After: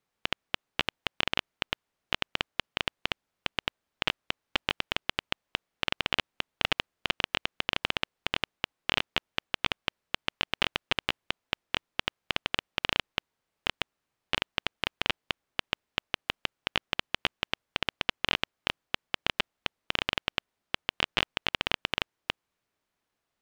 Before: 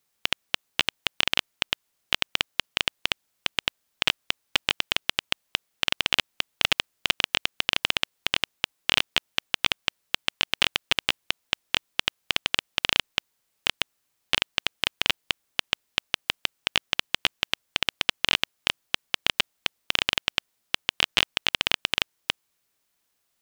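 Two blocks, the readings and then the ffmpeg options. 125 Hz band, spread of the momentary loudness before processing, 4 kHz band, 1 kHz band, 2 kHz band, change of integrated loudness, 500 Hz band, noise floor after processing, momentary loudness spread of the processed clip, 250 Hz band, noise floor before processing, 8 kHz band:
0.0 dB, 5 LU, −7.0 dB, −1.5 dB, −4.5 dB, −6.0 dB, −0.5 dB, −85 dBFS, 5 LU, 0.0 dB, −75 dBFS, −12.5 dB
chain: -af "lowpass=frequency=1600:poles=1"

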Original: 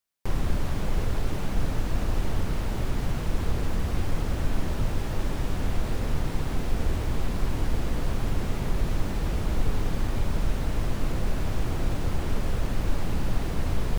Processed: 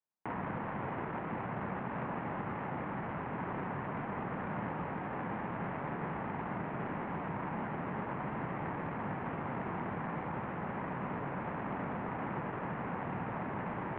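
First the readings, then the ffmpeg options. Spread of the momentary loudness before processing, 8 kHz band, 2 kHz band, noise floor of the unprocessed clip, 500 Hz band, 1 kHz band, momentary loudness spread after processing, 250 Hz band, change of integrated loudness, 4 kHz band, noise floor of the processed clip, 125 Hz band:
1 LU, below −35 dB, −2.5 dB, −30 dBFS, −5.0 dB, +1.5 dB, 1 LU, −5.5 dB, −8.0 dB, −20.0 dB, −40 dBFS, −12.5 dB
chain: -af "adynamicsmooth=sensitivity=5:basefreq=940,equalizer=frequency=125:width_type=o:width=1:gain=-11,equalizer=frequency=250:width_type=o:width=1:gain=8,equalizer=frequency=1000:width_type=o:width=1:gain=11,equalizer=frequency=2000:width_type=o:width=1:gain=9,highpass=frequency=160:width_type=q:width=0.5412,highpass=frequency=160:width_type=q:width=1.307,lowpass=frequency=3000:width_type=q:width=0.5176,lowpass=frequency=3000:width_type=q:width=0.7071,lowpass=frequency=3000:width_type=q:width=1.932,afreqshift=-76,volume=-8dB"

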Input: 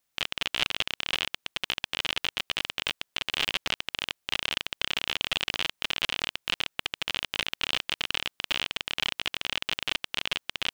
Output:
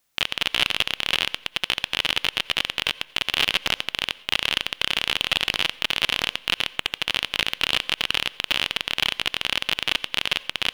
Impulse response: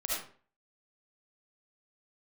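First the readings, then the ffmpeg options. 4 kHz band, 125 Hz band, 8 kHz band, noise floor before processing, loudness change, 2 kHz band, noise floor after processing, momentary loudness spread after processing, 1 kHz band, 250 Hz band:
+6.5 dB, +5.5 dB, +5.0 dB, −79 dBFS, +6.5 dB, +6.5 dB, −51 dBFS, 4 LU, +6.0 dB, +5.5 dB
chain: -filter_complex "[0:a]acontrast=79,asplit=2[link_01][link_02];[1:a]atrim=start_sample=2205,asetrate=35721,aresample=44100[link_03];[link_02][link_03]afir=irnorm=-1:irlink=0,volume=-25dB[link_04];[link_01][link_04]amix=inputs=2:normalize=0"

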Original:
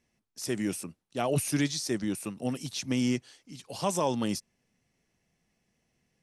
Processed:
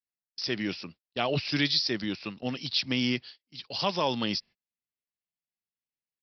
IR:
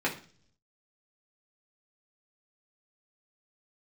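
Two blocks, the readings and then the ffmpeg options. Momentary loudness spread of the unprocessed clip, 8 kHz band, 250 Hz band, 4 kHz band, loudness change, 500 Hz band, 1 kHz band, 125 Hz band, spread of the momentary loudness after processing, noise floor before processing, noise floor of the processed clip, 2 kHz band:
11 LU, −12.5 dB, −1.5 dB, +10.0 dB, +1.5 dB, −1.0 dB, +1.0 dB, −2.0 dB, 12 LU, −79 dBFS, below −85 dBFS, +6.5 dB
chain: -af "crystalizer=i=7.5:c=0,agate=range=-32dB:threshold=-37dB:ratio=16:detection=peak,aresample=11025,aresample=44100,volume=-2dB"

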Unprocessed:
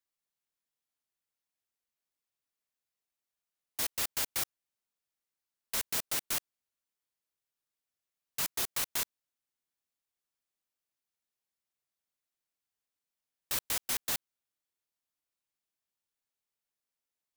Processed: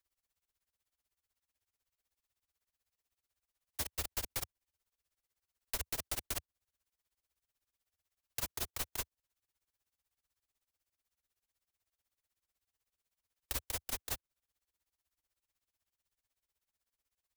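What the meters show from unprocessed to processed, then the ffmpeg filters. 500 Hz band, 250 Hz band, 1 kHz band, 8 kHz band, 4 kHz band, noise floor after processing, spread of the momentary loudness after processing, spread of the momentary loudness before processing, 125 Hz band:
−2.5 dB, −3.5 dB, −5.0 dB, −6.5 dB, −7.0 dB, below −85 dBFS, 4 LU, 5 LU, +4.0 dB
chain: -filter_complex "[0:a]tremolo=f=16:d=0.97,acrossover=split=260|810[link_01][link_02][link_03];[link_01]acompressor=threshold=-59dB:ratio=4[link_04];[link_02]acompressor=threshold=-54dB:ratio=4[link_05];[link_03]acompressor=threshold=-44dB:ratio=4[link_06];[link_04][link_05][link_06]amix=inputs=3:normalize=0,lowshelf=frequency=110:width_type=q:width=1.5:gain=10.5,volume=6.5dB"

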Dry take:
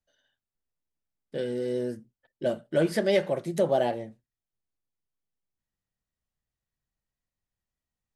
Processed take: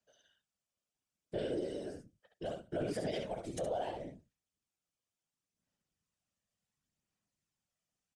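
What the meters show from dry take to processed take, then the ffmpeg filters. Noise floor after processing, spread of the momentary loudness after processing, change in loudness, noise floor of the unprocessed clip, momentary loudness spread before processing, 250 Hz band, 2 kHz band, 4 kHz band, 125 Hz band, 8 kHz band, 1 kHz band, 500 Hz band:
below −85 dBFS, 9 LU, −12.0 dB, below −85 dBFS, 13 LU, −11.0 dB, −14.0 dB, −9.5 dB, −10.0 dB, −6.5 dB, −9.0 dB, −12.0 dB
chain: -filter_complex "[0:a]highpass=frequency=130:width=0.5412,highpass=frequency=130:width=1.3066,equalizer=frequency=240:width_type=q:width=4:gain=-8,equalizer=frequency=600:width_type=q:width=4:gain=4,equalizer=frequency=1900:width_type=q:width=4:gain=-6,equalizer=frequency=4100:width_type=q:width=4:gain=-5,lowpass=frequency=9100:width=0.5412,lowpass=frequency=9100:width=1.3066,acompressor=threshold=-43dB:ratio=2,aphaser=in_gain=1:out_gain=1:delay=1.7:decay=0.38:speed=0.7:type=sinusoidal,equalizer=frequency=660:width=0.51:gain=-6.5,asplit=2[link_01][link_02];[link_02]aecho=0:1:21|68:0.158|0.531[link_03];[link_01][link_03]amix=inputs=2:normalize=0,afftfilt=real='hypot(re,im)*cos(2*PI*random(0))':imag='hypot(re,im)*sin(2*PI*random(1))':win_size=512:overlap=0.75,alimiter=level_in=14dB:limit=-24dB:level=0:latency=1:release=40,volume=-14dB,volume=10dB"

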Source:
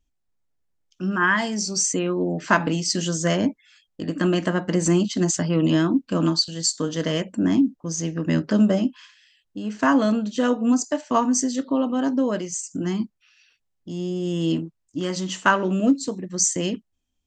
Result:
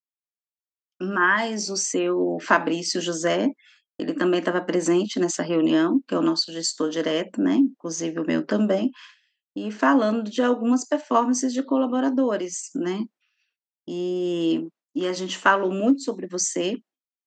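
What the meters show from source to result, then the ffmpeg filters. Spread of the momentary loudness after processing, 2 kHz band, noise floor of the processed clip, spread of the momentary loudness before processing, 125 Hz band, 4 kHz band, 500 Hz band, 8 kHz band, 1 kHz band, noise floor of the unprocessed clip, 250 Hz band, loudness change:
9 LU, +0.5 dB, below −85 dBFS, 9 LU, −9.5 dB, −1.5 dB, +2.0 dB, −4.0 dB, +1.0 dB, −74 dBFS, −1.0 dB, −1.0 dB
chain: -filter_complex "[0:a]highpass=frequency=250:width=0.5412,highpass=frequency=250:width=1.3066,agate=range=-33dB:threshold=-46dB:ratio=3:detection=peak,aemphasis=mode=reproduction:type=50kf,asplit=2[link_01][link_02];[link_02]acompressor=threshold=-33dB:ratio=6,volume=0dB[link_03];[link_01][link_03]amix=inputs=2:normalize=0"

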